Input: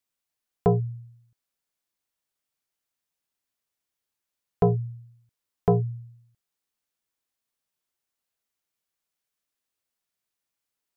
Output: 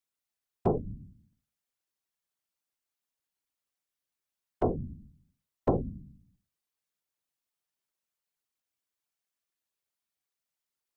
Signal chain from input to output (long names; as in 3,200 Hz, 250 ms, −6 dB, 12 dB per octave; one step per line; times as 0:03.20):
mains-hum notches 60/120/180/240/300/360/420/480 Hz
random phases in short frames
level −4.5 dB